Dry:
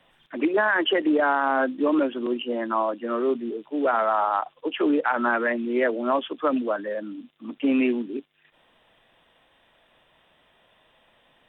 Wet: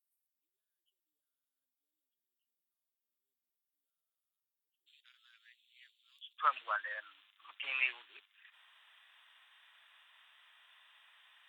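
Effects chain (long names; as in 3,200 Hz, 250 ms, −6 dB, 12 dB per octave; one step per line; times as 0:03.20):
inverse Chebyshev high-pass filter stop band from 2,200 Hz, stop band 80 dB, from 0:04.86 stop band from 830 Hz, from 0:06.37 stop band from 190 Hz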